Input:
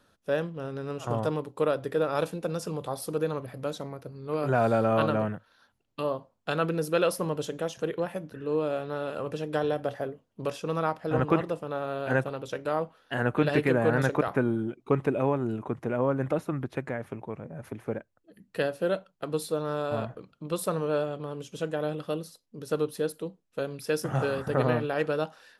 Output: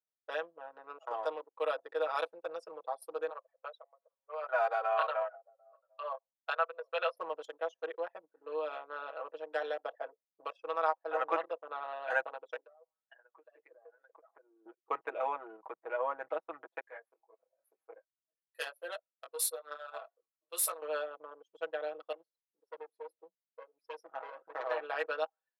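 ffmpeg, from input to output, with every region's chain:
-filter_complex "[0:a]asettb=1/sr,asplit=3[s0][s1][s2];[s0]atrim=end=3.304[s3];[s1]atrim=start=3.3:end=7.17,asetpts=PTS-STARTPTS,afade=t=in:d=0.004:c=qsin,afade=t=out:st=3.866:d=0.004:c=qsin,highpass=f=540:w=0.5412,highpass=f=540:w=1.3066,aemphasis=mode=reproduction:type=50fm,aecho=1:1:743:0.126,atrim=end_sample=170667[s4];[s2]atrim=start=7.166[s5];[s3][s4]acrossfade=d=0.004:c1=hsin:c2=qsin[s6];[s6][s5]acrossfade=d=0.004:c1=qsin:c2=hsin,asettb=1/sr,asplit=3[s7][s8][s9];[s7]atrim=end=12.644[s10];[s8]atrim=start=12.64:end=14.66,asetpts=PTS-STARTPTS,afade=t=in:d=0.004:c=qsin,afade=t=out:st=2.016:d=0.004:c=qsin,highpass=f=400:p=1,acompressor=threshold=0.0141:ratio=16:attack=3.2:release=140:knee=1:detection=peak[s11];[s9]atrim=start=14.656[s12];[s10][s11]acrossfade=d=0.004:c1=hsin:c2=qsin[s13];[s13][s12]acrossfade=d=0.004:c1=qsin:c2=hsin,asettb=1/sr,asplit=3[s14][s15][s16];[s14]atrim=end=16.804[s17];[s15]atrim=start=16.8:end=20.82,asetpts=PTS-STARTPTS,afade=t=in:d=0.004:c=qsin,afade=t=out:st=4.016:d=0.004:c=qsin,aemphasis=mode=production:type=riaa,volume=10,asoftclip=hard,volume=0.1,flanger=delay=18.5:depth=3.3:speed=1.8[s18];[s16]atrim=start=20.816[s19];[s17][s18]acrossfade=d=0.004:c1=hsin:c2=qsin[s20];[s20][s19]acrossfade=d=0.004:c1=qsin:c2=hsin,asettb=1/sr,asplit=3[s21][s22][s23];[s21]atrim=end=22.124[s24];[s22]atrim=start=22.12:end=24.71,asetpts=PTS-STARTPTS,afade=t=in:d=0.004:c=qsin,afade=t=out:st=2.586:d=0.004:c=qsin,aeval=exprs='clip(val(0),-1,0.0211)':c=same,flanger=delay=5.1:depth=5.8:regen=66:speed=1.7:shape=sinusoidal[s25];[s23]atrim=start=24.706[s26];[s24][s25]acrossfade=d=0.004:c1=hsin:c2=qsin[s27];[s27][s26]acrossfade=d=0.004:c1=qsin:c2=hsin,anlmdn=10,highpass=f=590:w=0.5412,highpass=f=590:w=1.3066,aecho=1:1:6.2:1,volume=0.562"

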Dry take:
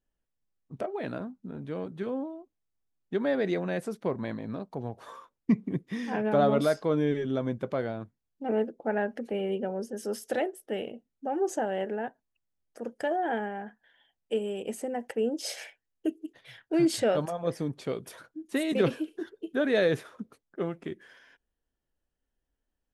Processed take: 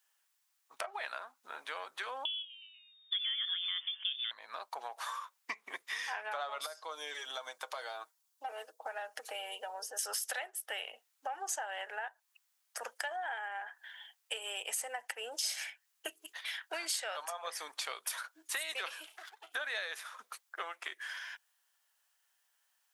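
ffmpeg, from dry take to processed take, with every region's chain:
-filter_complex "[0:a]asettb=1/sr,asplit=3[s0][s1][s2];[s0]atrim=end=2.254[s3];[s1]atrim=start=2.25:end=4.31,asetpts=PTS-STARTPTS,afade=t=in:d=0.004:c=qsin,afade=t=out:st=2.056:d=0.004:c=qsin,asplit=5[s4][s5][s6][s7][s8];[s5]adelay=122,afreqshift=140,volume=0.0891[s9];[s6]adelay=244,afreqshift=280,volume=0.0447[s10];[s7]adelay=366,afreqshift=420,volume=0.0224[s11];[s8]adelay=488,afreqshift=560,volume=0.0111[s12];[s4][s9][s10][s11][s12]amix=inputs=5:normalize=0,atrim=end_sample=90846,lowpass=f=3100:t=q:w=0.5098,lowpass=f=3100:t=q:w=0.6013,lowpass=f=3100:t=q:w=0.9,lowpass=f=3100:t=q:w=2.563,afreqshift=-3700[s13];[s2]atrim=start=4.306[s14];[s3][s13]acrossfade=d=0.004:c1=hsin:c2=qsin[s15];[s15][s14]acrossfade=d=0.004:c1=qsin:c2=hsin,asettb=1/sr,asplit=3[s16][s17][s18];[s16]atrim=end=6.664[s19];[s17]atrim=start=6.66:end=9.99,asetpts=PTS-STARTPTS,afade=t=in:d=0.004:c=qsin,afade=t=out:st=3.326:d=0.004:c=qsin,equalizer=f=2100:t=o:w=1.5:g=-8,acrossover=split=420|3500[s20][s21][s22];[s20]acompressor=threshold=0.00794:ratio=4[s23];[s21]acompressor=threshold=0.00891:ratio=4[s24];[s22]acompressor=threshold=0.001:ratio=4[s25];[s23][s24][s25]amix=inputs=3:normalize=0,aecho=1:1:6.4:0.49,atrim=end_sample=146853[s26];[s18]atrim=start=9.986[s27];[s19][s26]acrossfade=d=0.004:c1=hsin:c2=qsin[s28];[s28][s27]acrossfade=d=0.004:c1=qsin:c2=hsin,asettb=1/sr,asplit=3[s29][s30][s31];[s29]atrim=end=19.064[s32];[s30]atrim=start=19.06:end=19.52,asetpts=PTS-STARTPTS,afade=t=in:d=0.004:c=qsin,afade=t=out:st=0.456:d=0.004:c=qsin,acompressor=threshold=0.00398:ratio=2.5:attack=3.2:release=140:knee=1:detection=peak,aeval=exprs='max(val(0),0)':c=same[s33];[s31]atrim=start=19.516[s34];[s32][s33]acrossfade=d=0.004:c1=hsin:c2=qsin[s35];[s35][s34]acrossfade=d=0.004:c1=qsin:c2=hsin,highpass=f=910:w=0.5412,highpass=f=910:w=1.3066,acompressor=threshold=0.00282:ratio=6,highshelf=f=4600:g=5.5,volume=4.47"

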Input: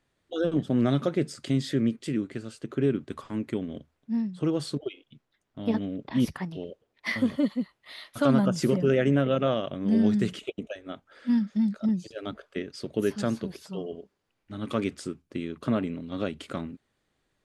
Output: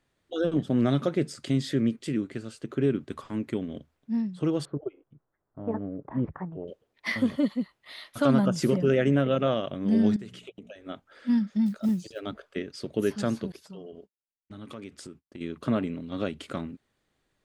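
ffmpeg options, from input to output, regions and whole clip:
-filter_complex "[0:a]asettb=1/sr,asplit=3[s0][s1][s2];[s0]atrim=end=4.654[s3];[s1]atrim=start=4.65:end=6.68,asetpts=PTS-STARTPTS,afade=t=in:d=0.004:c=qsin,afade=t=out:st=2.026:d=0.004:c=qsin,lowpass=f=1400:w=0.5412,lowpass=f=1400:w=1.3066,equalizer=f=230:w=3.6:g=-8[s4];[s2]atrim=start=6.676[s5];[s3][s4]acrossfade=d=0.004:c1=hsin:c2=qsin[s6];[s6][s5]acrossfade=d=0.004:c1=qsin:c2=hsin,asettb=1/sr,asplit=3[s7][s8][s9];[s7]atrim=end=10.164[s10];[s8]atrim=start=10.16:end=10.84,asetpts=PTS-STARTPTS,afade=t=in:d=0.004:c=qsin,afade=t=out:st=0.676:d=0.004:c=qsin,bandreject=f=60:t=h:w=6,bandreject=f=120:t=h:w=6,bandreject=f=180:t=h:w=6,bandreject=f=240:t=h:w=6,acompressor=threshold=0.00631:ratio=2.5:attack=3.2:release=140:knee=1:detection=peak[s11];[s9]atrim=start=10.836[s12];[s10][s11]acrossfade=d=0.004:c1=hsin:c2=qsin[s13];[s13][s12]acrossfade=d=0.004:c1=qsin:c2=hsin,asettb=1/sr,asplit=3[s14][s15][s16];[s14]atrim=end=11.664[s17];[s15]atrim=start=11.66:end=12.2,asetpts=PTS-STARTPTS,afade=t=in:d=0.004:c=qsin,afade=t=out:st=0.536:d=0.004:c=qsin,highshelf=f=6700:g=5,acrusher=bits=8:mode=log:mix=0:aa=0.000001[s18];[s16]atrim=start=12.196[s19];[s17][s18]acrossfade=d=0.004:c1=hsin:c2=qsin[s20];[s20][s19]acrossfade=d=0.004:c1=qsin:c2=hsin,asettb=1/sr,asplit=3[s21][s22][s23];[s21]atrim=end=13.524[s24];[s22]atrim=start=13.52:end=15.41,asetpts=PTS-STARTPTS,afade=t=in:d=0.004:c=qsin,afade=t=out:st=1.886:d=0.004:c=qsin,agate=range=0.0224:threshold=0.00562:ratio=3:release=100:detection=peak,acompressor=threshold=0.00891:ratio=3:attack=3.2:release=140:knee=1:detection=peak[s25];[s23]atrim=start=15.406[s26];[s24][s25]acrossfade=d=0.004:c1=hsin:c2=qsin[s27];[s27][s26]acrossfade=d=0.004:c1=qsin:c2=hsin"

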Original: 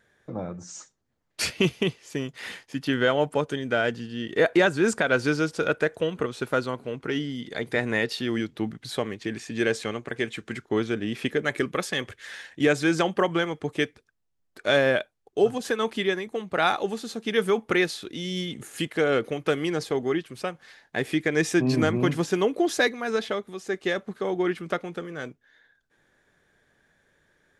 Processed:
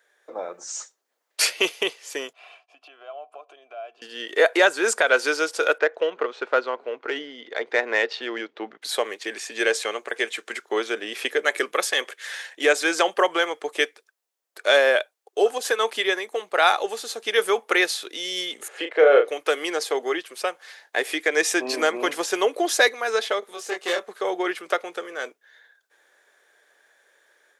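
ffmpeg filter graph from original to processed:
-filter_complex "[0:a]asettb=1/sr,asplit=3[s0][s1][s2];[s0]atrim=end=2.334[s3];[s1]atrim=start=2.33:end=4.02,asetpts=PTS-STARTPTS,afade=t=in:d=0.004:c=qsin,afade=t=out:st=1.686:d=0.004:c=qsin,aecho=1:1:3:0.48,atrim=end_sample=74529,acompressor=threshold=0.0251:ratio=4:attack=3.2:release=140:knee=1:detection=peak,asplit=3[s4][s5][s6];[s4]bandpass=f=730:t=q:w=8,volume=1[s7];[s5]bandpass=f=1090:t=q:w=8,volume=0.501[s8];[s6]bandpass=f=2440:t=q:w=8,volume=0.355[s9];[s7][s8][s9]amix=inputs=3:normalize=0[s10];[s2]atrim=start=4.016[s11];[s3][s10]acrossfade=d=0.004:c1=hsin:c2=qsin[s12];[s12][s11]acrossfade=d=0.004:c1=qsin:c2=hsin,asettb=1/sr,asplit=3[s13][s14][s15];[s13]atrim=end=5.784[s16];[s14]atrim=start=5.78:end=8.82,asetpts=PTS-STARTPTS,afade=t=in:d=0.004:c=qsin,afade=t=out:st=3.036:d=0.004:c=qsin,adynamicsmooth=sensitivity=1:basefreq=2700,lowpass=f=7300:w=0.5412,lowpass=f=7300:w=1.3066[s17];[s15]atrim=start=8.816[s18];[s16][s17]acrossfade=d=0.004:c1=hsin:c2=qsin[s19];[s19][s18]acrossfade=d=0.004:c1=qsin:c2=hsin,asettb=1/sr,asplit=3[s20][s21][s22];[s20]atrim=end=18.684[s23];[s21]atrim=start=18.68:end=19.28,asetpts=PTS-STARTPTS,afade=t=in:d=0.004:c=qsin,afade=t=out:st=0.596:d=0.004:c=qsin,highpass=290,lowpass=2500,equalizer=f=500:w=1.5:g=8,asplit=2[s24][s25];[s25]adelay=36,volume=0.501[s26];[s24][s26]amix=inputs=2:normalize=0,atrim=end_sample=26460[s27];[s22]atrim=start=19.276[s28];[s23][s27]acrossfade=d=0.004:c1=hsin:c2=qsin[s29];[s29][s28]acrossfade=d=0.004:c1=qsin:c2=hsin,asettb=1/sr,asplit=3[s30][s31][s32];[s30]atrim=end=23.404[s33];[s31]atrim=start=23.4:end=24.09,asetpts=PTS-STARTPTS,afade=t=in:d=0.004:c=qsin,afade=t=out:st=0.686:d=0.004:c=qsin,aeval=exprs='(tanh(17.8*val(0)+0.45)-tanh(0.45))/17.8':c=same,asplit=2[s34][s35];[s35]adelay=23,volume=0.794[s36];[s34][s36]amix=inputs=2:normalize=0,atrim=end_sample=30429[s37];[s32]atrim=start=24.086[s38];[s33][s37]acrossfade=d=0.004:c1=hsin:c2=qsin[s39];[s39][s38]acrossfade=d=0.004:c1=qsin:c2=hsin,dynaudnorm=f=210:g=3:m=1.88,highpass=f=440:w=0.5412,highpass=f=440:w=1.3066,highshelf=f=6900:g=6.5"

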